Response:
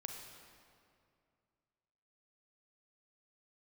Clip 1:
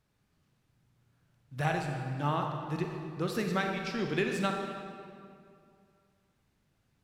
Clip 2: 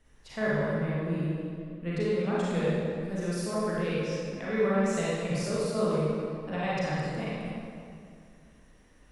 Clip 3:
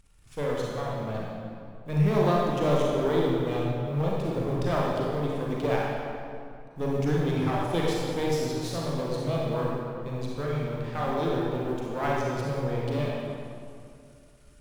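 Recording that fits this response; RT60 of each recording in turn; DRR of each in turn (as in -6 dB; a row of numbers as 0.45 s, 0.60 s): 1; 2.4 s, 2.4 s, 2.4 s; 2.5 dB, -9.0 dB, -4.5 dB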